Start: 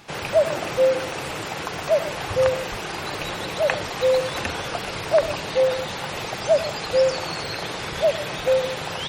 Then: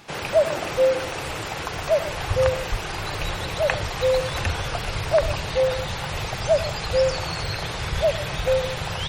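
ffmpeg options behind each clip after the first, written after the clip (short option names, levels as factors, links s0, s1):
-af "asubboost=boost=8.5:cutoff=88"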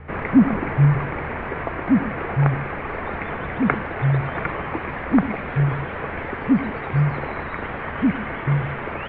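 -af "asubboost=boost=6:cutoff=180,aeval=exprs='val(0)+0.0447*(sin(2*PI*60*n/s)+sin(2*PI*2*60*n/s)/2+sin(2*PI*3*60*n/s)/3+sin(2*PI*4*60*n/s)/4+sin(2*PI*5*60*n/s)/5)':c=same,highpass=f=320:t=q:w=0.5412,highpass=f=320:t=q:w=1.307,lowpass=f=2500:t=q:w=0.5176,lowpass=f=2500:t=q:w=0.7071,lowpass=f=2500:t=q:w=1.932,afreqshift=-380,volume=1.78"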